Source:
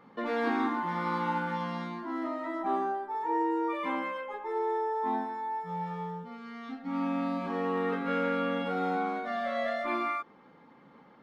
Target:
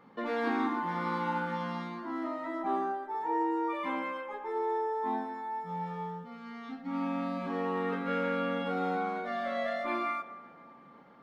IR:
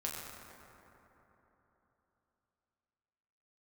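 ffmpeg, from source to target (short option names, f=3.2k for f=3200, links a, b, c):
-filter_complex "[0:a]asplit=2[a][b];[1:a]atrim=start_sample=2205,adelay=121[c];[b][c]afir=irnorm=-1:irlink=0,volume=-18dB[d];[a][d]amix=inputs=2:normalize=0,volume=-1.5dB"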